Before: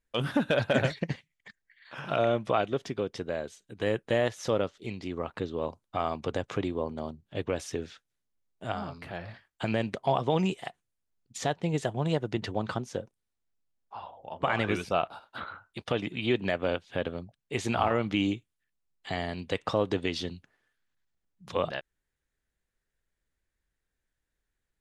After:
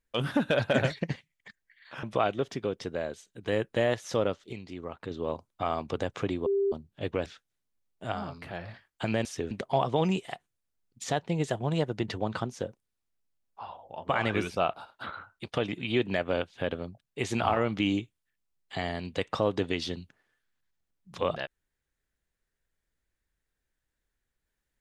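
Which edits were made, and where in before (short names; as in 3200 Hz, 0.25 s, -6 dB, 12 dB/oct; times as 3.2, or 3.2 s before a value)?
2.03–2.37 cut
4.87–5.45 gain -5 dB
6.8–7.06 bleep 396 Hz -23 dBFS
7.6–7.86 move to 9.85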